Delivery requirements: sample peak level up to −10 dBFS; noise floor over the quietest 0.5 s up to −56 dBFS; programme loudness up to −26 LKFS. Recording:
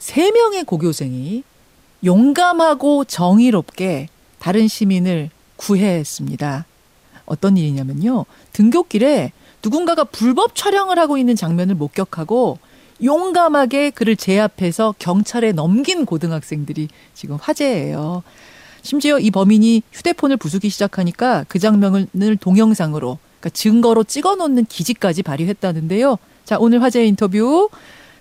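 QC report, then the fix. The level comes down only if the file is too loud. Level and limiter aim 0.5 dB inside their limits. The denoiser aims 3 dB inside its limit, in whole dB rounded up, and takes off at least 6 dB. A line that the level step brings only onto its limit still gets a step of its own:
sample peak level −4.5 dBFS: out of spec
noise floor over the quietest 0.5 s −52 dBFS: out of spec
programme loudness −16.0 LKFS: out of spec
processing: level −10.5 dB

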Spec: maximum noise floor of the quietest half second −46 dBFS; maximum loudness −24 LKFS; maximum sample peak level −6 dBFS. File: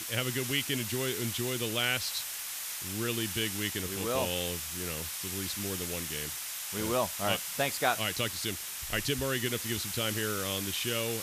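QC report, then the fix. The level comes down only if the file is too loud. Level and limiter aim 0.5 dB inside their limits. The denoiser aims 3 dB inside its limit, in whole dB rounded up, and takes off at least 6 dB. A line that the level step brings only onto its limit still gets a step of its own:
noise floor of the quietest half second −38 dBFS: out of spec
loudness −31.5 LKFS: in spec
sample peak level −13.5 dBFS: in spec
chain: broadband denoise 11 dB, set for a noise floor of −38 dBFS

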